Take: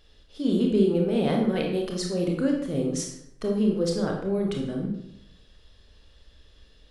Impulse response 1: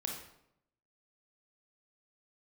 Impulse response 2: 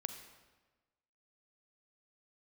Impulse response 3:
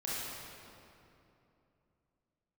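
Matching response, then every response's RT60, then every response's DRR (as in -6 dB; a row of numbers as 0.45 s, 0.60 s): 1; 0.75 s, 1.3 s, 2.9 s; 0.5 dB, 7.5 dB, -8.5 dB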